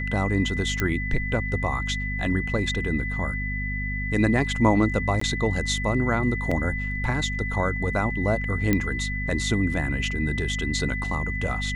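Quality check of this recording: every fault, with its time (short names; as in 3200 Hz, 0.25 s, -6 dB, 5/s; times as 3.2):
hum 50 Hz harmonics 5 -30 dBFS
tone 2000 Hz -30 dBFS
0.8 pop -10 dBFS
5.2–5.21 gap 14 ms
6.51 gap 4.8 ms
8.73 pop -8 dBFS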